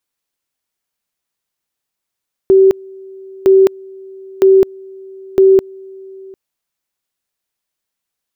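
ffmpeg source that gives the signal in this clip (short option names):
-f lavfi -i "aevalsrc='pow(10,(-4-26.5*gte(mod(t,0.96),0.21))/20)*sin(2*PI*384*t)':d=3.84:s=44100"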